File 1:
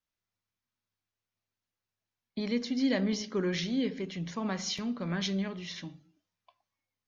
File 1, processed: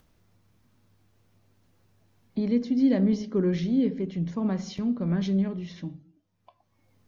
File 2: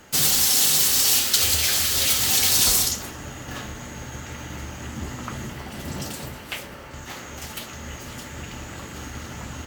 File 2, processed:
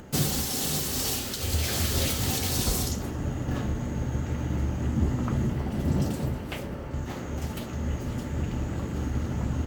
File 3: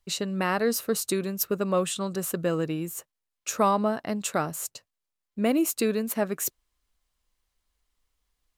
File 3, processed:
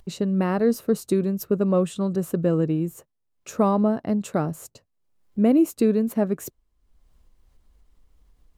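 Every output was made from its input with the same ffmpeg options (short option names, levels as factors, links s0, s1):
-af "alimiter=limit=0.316:level=0:latency=1:release=456,tiltshelf=f=780:g=9,acompressor=mode=upward:threshold=0.00631:ratio=2.5"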